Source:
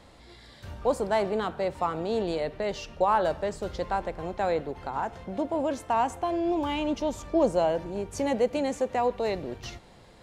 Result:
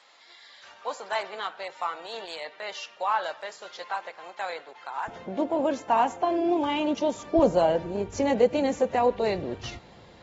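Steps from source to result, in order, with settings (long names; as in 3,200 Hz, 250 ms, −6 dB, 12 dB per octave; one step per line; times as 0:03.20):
high-pass filter 1,100 Hz 12 dB per octave, from 0:05.08 190 Hz, from 0:07.39 64 Hz
level +2 dB
AAC 24 kbit/s 48,000 Hz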